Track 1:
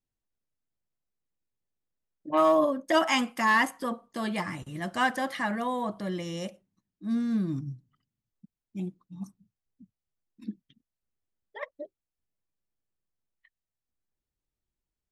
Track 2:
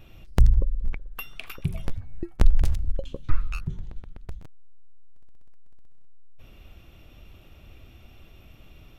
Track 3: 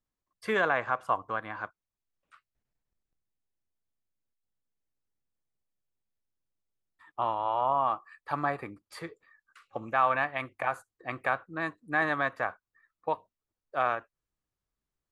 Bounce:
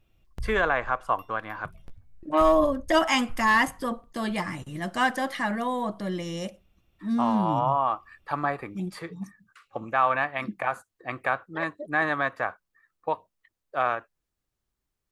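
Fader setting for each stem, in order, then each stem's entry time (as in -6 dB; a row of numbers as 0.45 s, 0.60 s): +2.0 dB, -18.0 dB, +2.5 dB; 0.00 s, 0.00 s, 0.00 s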